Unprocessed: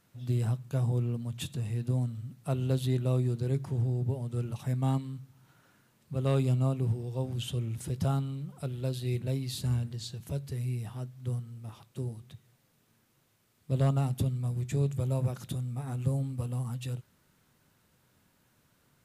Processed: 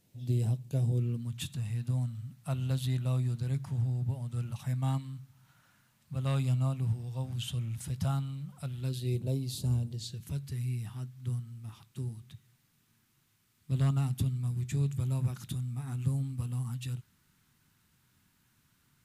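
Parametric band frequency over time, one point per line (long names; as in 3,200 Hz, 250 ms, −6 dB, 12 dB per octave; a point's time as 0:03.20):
parametric band −14.5 dB 1.1 octaves
0:00.69 1,300 Hz
0:01.61 400 Hz
0:08.76 400 Hz
0:09.18 1,800 Hz
0:09.85 1,800 Hz
0:10.32 540 Hz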